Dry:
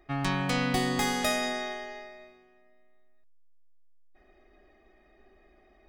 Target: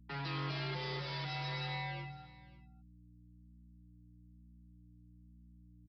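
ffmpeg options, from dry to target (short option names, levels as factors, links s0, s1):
-filter_complex "[0:a]aemphasis=mode=production:type=bsi,afftfilt=real='re*gte(hypot(re,im),0.0178)':imag='im*gte(hypot(re,im),0.0178)':win_size=1024:overlap=0.75,anlmdn=0.1,highpass=88,aeval=exprs='(tanh(112*val(0)+0.35)-tanh(0.35))/112':c=same,aresample=16000,aeval=exprs='max(val(0),0)':c=same,aresample=44100,afreqshift=140,aeval=exprs='val(0)+0.000501*(sin(2*PI*60*n/s)+sin(2*PI*2*60*n/s)/2+sin(2*PI*3*60*n/s)/3+sin(2*PI*4*60*n/s)/4+sin(2*PI*5*60*n/s)/5)':c=same,flanger=delay=5.4:depth=1:regen=-9:speed=1.1:shape=sinusoidal,asplit=2[s0][s1];[s1]aecho=0:1:554:0.1[s2];[s0][s2]amix=inputs=2:normalize=0,aresample=11025,aresample=44100,volume=4.47"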